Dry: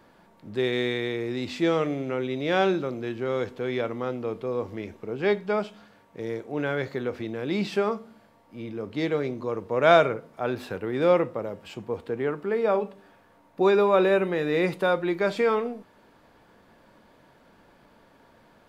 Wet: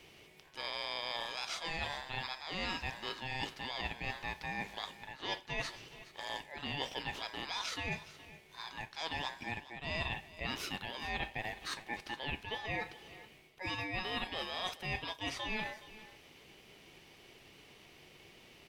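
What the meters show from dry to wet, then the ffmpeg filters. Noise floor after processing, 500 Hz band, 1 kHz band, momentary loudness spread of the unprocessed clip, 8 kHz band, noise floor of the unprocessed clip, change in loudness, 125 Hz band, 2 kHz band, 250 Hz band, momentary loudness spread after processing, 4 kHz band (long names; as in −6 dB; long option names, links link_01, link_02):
−60 dBFS, −23.5 dB, −11.0 dB, 14 LU, can't be measured, −58 dBFS, −13.0 dB, −12.0 dB, −6.5 dB, −19.0 dB, 19 LU, −0.5 dB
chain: -af "highpass=1200,areverse,acompressor=threshold=-40dB:ratio=16,areverse,aeval=exprs='val(0)*sin(2*PI*1300*n/s)':channel_layout=same,aecho=1:1:418:0.141,volume=8.5dB"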